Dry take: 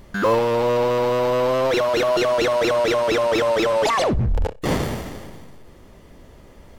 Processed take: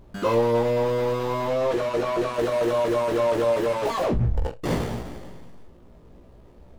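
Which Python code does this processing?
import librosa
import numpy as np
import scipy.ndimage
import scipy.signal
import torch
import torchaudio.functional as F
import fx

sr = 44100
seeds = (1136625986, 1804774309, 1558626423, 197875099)

p1 = scipy.signal.medfilt(x, 25)
p2 = fx.high_shelf(p1, sr, hz=12000.0, db=-10.0, at=(1.49, 2.34))
p3 = p2 + fx.room_early_taps(p2, sr, ms=(17, 43), db=(-4.0, -9.0), dry=0)
y = p3 * 10.0 ** (-5.0 / 20.0)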